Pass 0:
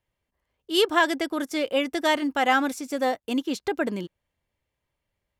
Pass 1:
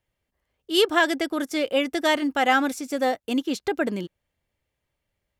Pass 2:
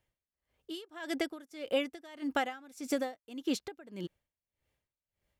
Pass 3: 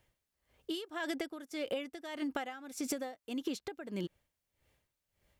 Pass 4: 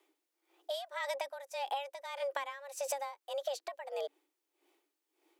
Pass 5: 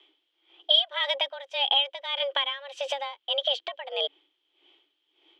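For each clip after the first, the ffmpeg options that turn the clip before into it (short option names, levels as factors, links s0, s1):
-af "equalizer=f=1000:t=o:w=0.21:g=-5,volume=1.19"
-af "acompressor=threshold=0.0501:ratio=6,aeval=exprs='val(0)*pow(10,-23*(0.5-0.5*cos(2*PI*1.7*n/s))/20)':c=same"
-af "acompressor=threshold=0.00891:ratio=16,volume=2.37"
-af "afreqshift=280"
-af "lowpass=f=3200:t=q:w=15,volume=1.78"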